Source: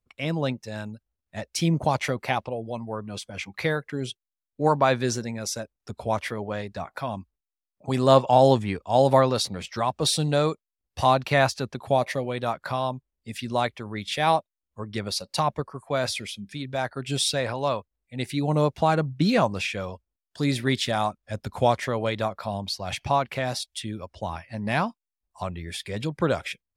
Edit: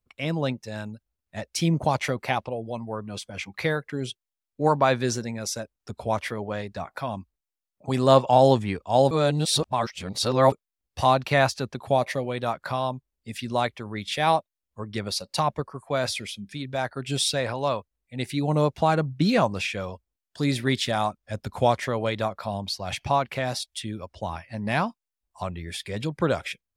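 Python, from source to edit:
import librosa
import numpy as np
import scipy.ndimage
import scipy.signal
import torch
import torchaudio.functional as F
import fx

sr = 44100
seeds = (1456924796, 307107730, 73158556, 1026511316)

y = fx.edit(x, sr, fx.reverse_span(start_s=9.11, length_s=1.41), tone=tone)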